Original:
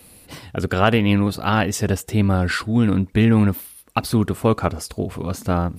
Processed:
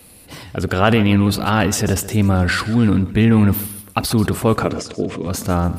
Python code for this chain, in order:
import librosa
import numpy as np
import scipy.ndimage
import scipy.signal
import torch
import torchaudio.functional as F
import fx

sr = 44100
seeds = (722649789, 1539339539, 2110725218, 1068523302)

p1 = fx.transient(x, sr, attack_db=-1, sustain_db=7)
p2 = fx.cabinet(p1, sr, low_hz=150.0, low_slope=12, high_hz=7200.0, hz=(300.0, 470.0, 850.0, 1400.0, 4600.0), db=(6, 4, -9, -6, -5), at=(4.63, 5.27))
p3 = p2 + fx.echo_feedback(p2, sr, ms=138, feedback_pct=39, wet_db=-16, dry=0)
y = F.gain(torch.from_numpy(p3), 2.0).numpy()